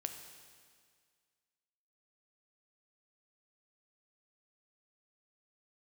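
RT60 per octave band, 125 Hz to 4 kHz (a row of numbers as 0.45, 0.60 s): 1.9, 1.9, 1.9, 1.9, 1.9, 1.9 s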